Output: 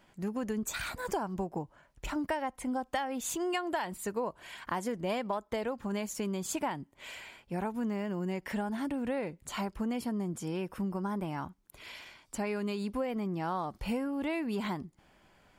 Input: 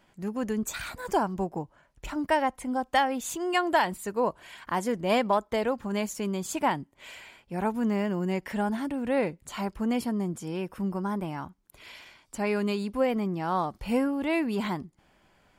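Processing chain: compressor, threshold -30 dBFS, peak gain reduction 11.5 dB

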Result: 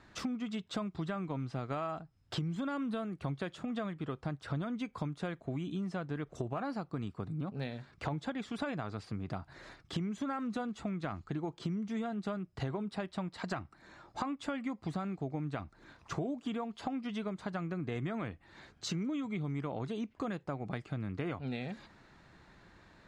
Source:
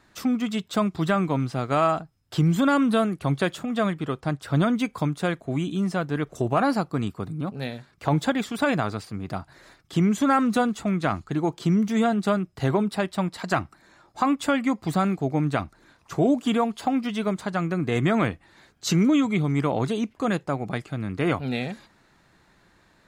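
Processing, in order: bell 65 Hz +3 dB 2.1 oct; compressor 6:1, threshold -35 dBFS, peak gain reduction 17.5 dB; air absorption 75 m

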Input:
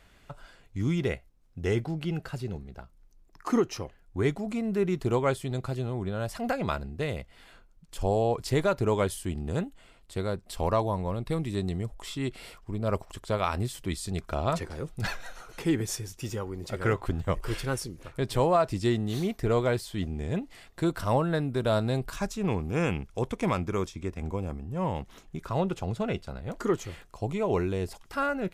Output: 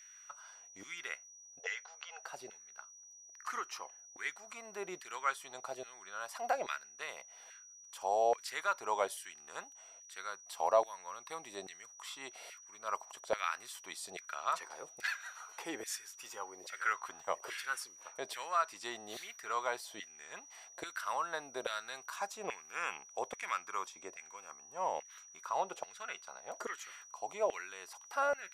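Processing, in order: LFO high-pass saw down 1.2 Hz 590–1900 Hz; 1.59–2.24 brick-wall FIR band-pass 420–7600 Hz; whine 5800 Hz -47 dBFS; gain -7 dB

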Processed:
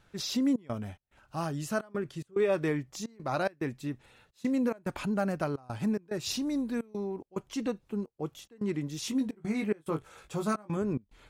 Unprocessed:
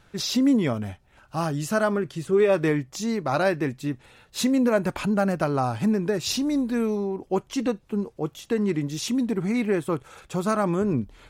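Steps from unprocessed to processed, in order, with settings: 9.02–10.77 doubler 19 ms -5 dB; step gate "xxxx.xx.x" 108 bpm -24 dB; gain -7 dB

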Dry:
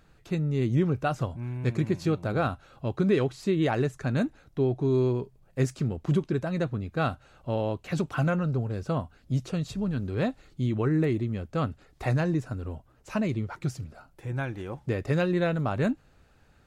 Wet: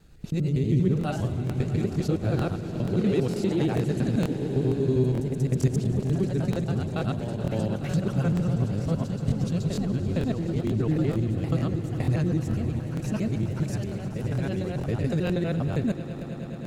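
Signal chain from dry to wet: local time reversal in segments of 80 ms; bell 1200 Hz -11 dB 2.6 oct; in parallel at +2 dB: compressor, threshold -38 dBFS, peak gain reduction 15.5 dB; on the sum: swelling echo 0.106 s, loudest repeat 5, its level -16 dB; echoes that change speed 0.111 s, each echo +1 st, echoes 3, each echo -6 dB; crackling interface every 0.46 s, samples 1024, repeat, from 0.99

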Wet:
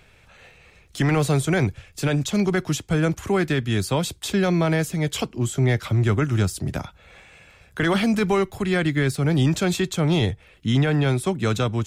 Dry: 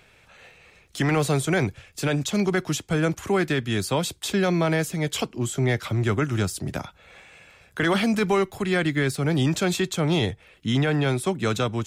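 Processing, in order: low shelf 120 Hz +9 dB

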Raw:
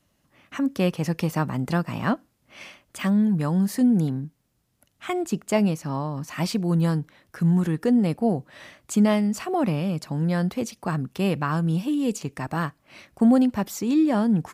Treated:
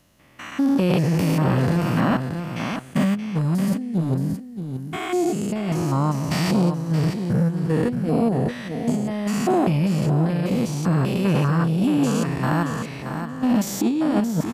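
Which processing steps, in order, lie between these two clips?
stepped spectrum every 0.2 s; negative-ratio compressor -26 dBFS, ratio -0.5; feedback echo 0.625 s, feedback 15%, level -9 dB; core saturation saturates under 540 Hz; gain +8 dB

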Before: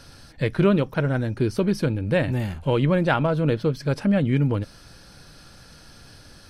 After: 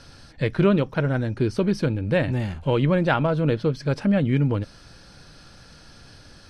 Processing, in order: LPF 7600 Hz 12 dB/oct

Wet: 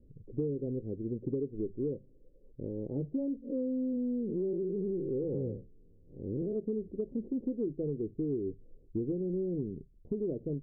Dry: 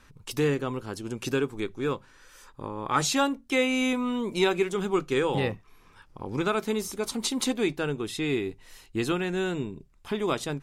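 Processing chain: 3.42–6.56 time blur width 0.14 s; steep low-pass 520 Hz 48 dB/oct; compressor, threshold -30 dBFS, peak gain reduction 9.5 dB

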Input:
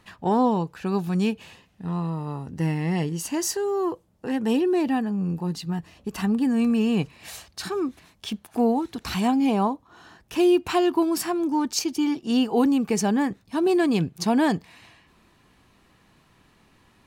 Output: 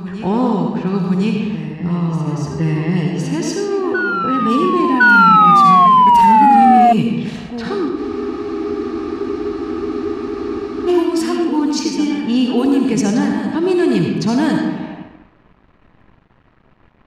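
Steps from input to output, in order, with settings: low shelf 140 Hz +7 dB; digital reverb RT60 1.1 s, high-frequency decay 0.75×, pre-delay 30 ms, DRR 1 dB; dynamic EQ 700 Hz, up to -6 dB, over -35 dBFS, Q 1.7; in parallel at +1 dB: compressor, threshold -31 dBFS, peak gain reduction 20 dB; on the sum: crossover distortion -48 dBFS; painted sound fall, 5–6.93, 700–1500 Hz -10 dBFS; low-pass opened by the level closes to 1800 Hz, open at -10.5 dBFS; soft clip -5 dBFS, distortion -20 dB; on a send: reverse echo 1.059 s -10.5 dB; on the sum: spectral freeze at 7.99, 2.88 s; gain +2.5 dB

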